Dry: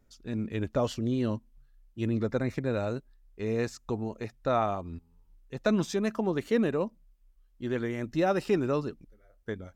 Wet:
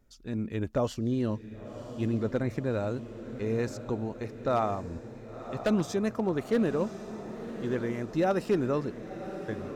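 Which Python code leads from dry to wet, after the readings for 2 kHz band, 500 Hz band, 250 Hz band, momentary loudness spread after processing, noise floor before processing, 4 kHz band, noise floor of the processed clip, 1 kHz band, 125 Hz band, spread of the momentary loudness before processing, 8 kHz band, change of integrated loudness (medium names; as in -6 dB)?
-2.0 dB, 0.0 dB, +0.5 dB, 12 LU, -64 dBFS, -2.5 dB, -45 dBFS, -0.5 dB, +0.5 dB, 12 LU, -1.0 dB, -0.5 dB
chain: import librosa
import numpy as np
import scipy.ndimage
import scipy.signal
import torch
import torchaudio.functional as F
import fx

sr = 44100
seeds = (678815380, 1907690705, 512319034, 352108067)

y = fx.dynamic_eq(x, sr, hz=3200.0, q=0.78, threshold_db=-50.0, ratio=4.0, max_db=-4)
y = 10.0 ** (-17.5 / 20.0) * (np.abs((y / 10.0 ** (-17.5 / 20.0) + 3.0) % 4.0 - 2.0) - 1.0)
y = fx.echo_diffused(y, sr, ms=1049, feedback_pct=59, wet_db=-11.5)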